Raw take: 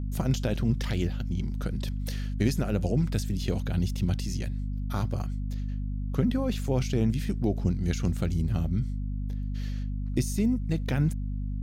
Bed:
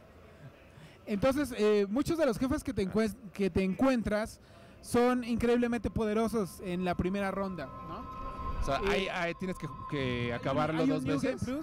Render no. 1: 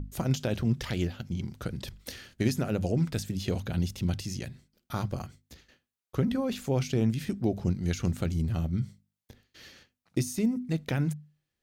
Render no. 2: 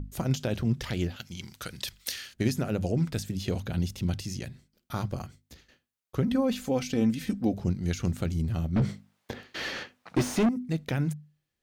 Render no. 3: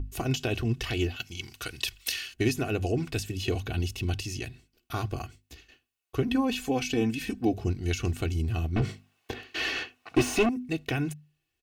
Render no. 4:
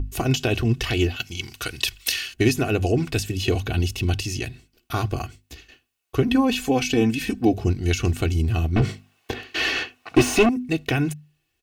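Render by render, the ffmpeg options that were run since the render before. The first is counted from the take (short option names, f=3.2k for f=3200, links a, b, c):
-af "bandreject=f=50:t=h:w=6,bandreject=f=100:t=h:w=6,bandreject=f=150:t=h:w=6,bandreject=f=200:t=h:w=6,bandreject=f=250:t=h:w=6"
-filter_complex "[0:a]asettb=1/sr,asplit=3[a][b][c];[a]atrim=end=1.164[d];[b]atrim=start=1.16:end=2.34,asetpts=PTS-STARTPTS,afade=t=in:d=0.004:c=qsin,afade=t=out:st=1.176:d=0.004:c=qsin,tiltshelf=f=970:g=-9.5[e];[c]atrim=start=2.336[f];[d][e]acrossfade=d=0.004:c1=hsin:c2=qsin[g];[g][f]acrossfade=d=0.004:c1=qsin:c2=hsin,asettb=1/sr,asplit=3[h][i][j];[h]atrim=end=6.314[k];[i]atrim=start=6.31:end=7.54,asetpts=PTS-STARTPTS,afade=t=in:d=0.004:c=qsin,afade=t=out:st=1.226:d=0.004:c=qsin,aecho=1:1:3.9:0.65,atrim=end_sample=54243[l];[j]atrim=start=7.536[m];[k][l]acrossfade=d=0.004:c1=hsin:c2=qsin[n];[n][m]acrossfade=d=0.004:c1=qsin:c2=hsin,asettb=1/sr,asplit=3[o][p][q];[o]atrim=end=8.764[r];[p]atrim=start=8.76:end=10.49,asetpts=PTS-STARTPTS,afade=t=in:d=0.004:c=qsin,afade=t=out:st=1.726:d=0.004:c=qsin,asplit=2[s][t];[t]highpass=f=720:p=1,volume=34dB,asoftclip=type=tanh:threshold=-15dB[u];[s][u]amix=inputs=2:normalize=0,lowpass=f=1.1k:p=1,volume=-6dB[v];[q]atrim=start=10.486[w];[r][v]acrossfade=d=0.004:c1=hsin:c2=qsin[x];[x][w]acrossfade=d=0.004:c1=qsin:c2=hsin"
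-af "equalizer=f=2.7k:w=5.1:g=10.5,aecho=1:1:2.7:0.72"
-af "volume=7dB"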